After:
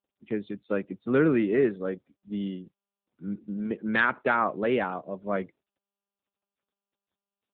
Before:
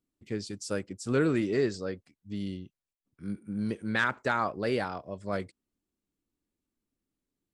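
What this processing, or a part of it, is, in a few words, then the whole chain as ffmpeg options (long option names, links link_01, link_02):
mobile call with aggressive noise cancelling: -filter_complex "[0:a]asplit=3[link_01][link_02][link_03];[link_01]afade=type=out:start_time=2.49:duration=0.02[link_04];[link_02]highpass=frequency=88:poles=1,afade=type=in:start_time=2.49:duration=0.02,afade=type=out:start_time=3.25:duration=0.02[link_05];[link_03]afade=type=in:start_time=3.25:duration=0.02[link_06];[link_04][link_05][link_06]amix=inputs=3:normalize=0,highpass=frequency=150:width=0.5412,highpass=frequency=150:width=1.3066,afftdn=noise_reduction=21:noise_floor=-54,volume=4.5dB" -ar 8000 -c:a libopencore_amrnb -b:a 10200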